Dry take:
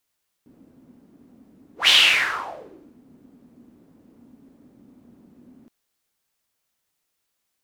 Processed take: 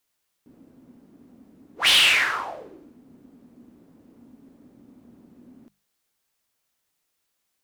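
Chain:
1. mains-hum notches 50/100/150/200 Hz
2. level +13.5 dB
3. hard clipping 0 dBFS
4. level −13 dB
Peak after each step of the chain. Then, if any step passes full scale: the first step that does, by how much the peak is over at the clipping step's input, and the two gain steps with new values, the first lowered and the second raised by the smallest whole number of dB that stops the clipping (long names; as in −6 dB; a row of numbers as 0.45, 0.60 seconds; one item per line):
−3.5, +10.0, 0.0, −13.0 dBFS
step 2, 10.0 dB
step 2 +3.5 dB, step 4 −3 dB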